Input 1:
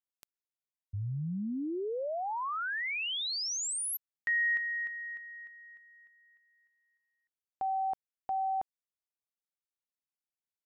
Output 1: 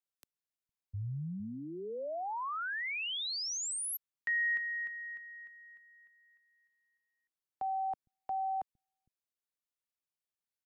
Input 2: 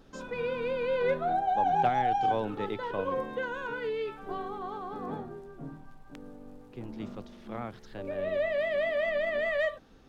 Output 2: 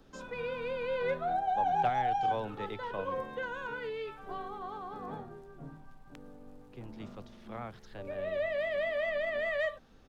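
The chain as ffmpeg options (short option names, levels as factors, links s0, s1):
-filter_complex "[0:a]acrossover=split=220|400|2700[s0][s1][s2][s3];[s0]aecho=1:1:458:0.2[s4];[s1]acompressor=threshold=0.00158:ratio=6:release=559[s5];[s4][s5][s2][s3]amix=inputs=4:normalize=0,volume=0.75"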